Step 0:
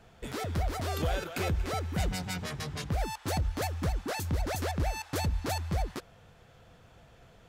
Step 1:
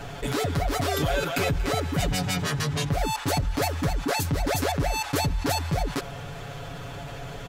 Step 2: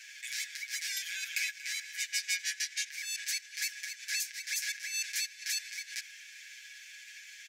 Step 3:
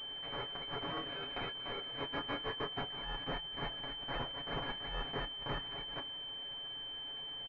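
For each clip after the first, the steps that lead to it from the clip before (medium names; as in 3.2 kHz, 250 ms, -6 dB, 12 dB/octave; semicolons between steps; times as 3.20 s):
comb 7.1 ms, depth 82%; level flattener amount 50%; trim +3 dB
rippled Chebyshev high-pass 1.6 kHz, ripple 9 dB; trim +2 dB
doubling 24 ms -9 dB; class-D stage that switches slowly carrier 3.1 kHz; trim -1 dB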